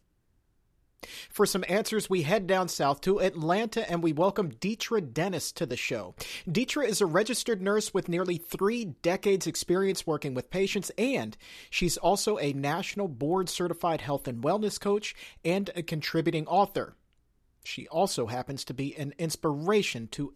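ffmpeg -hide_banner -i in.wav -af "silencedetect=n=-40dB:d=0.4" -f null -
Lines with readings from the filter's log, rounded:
silence_start: 0.00
silence_end: 1.00 | silence_duration: 1.00
silence_start: 16.89
silence_end: 17.63 | silence_duration: 0.74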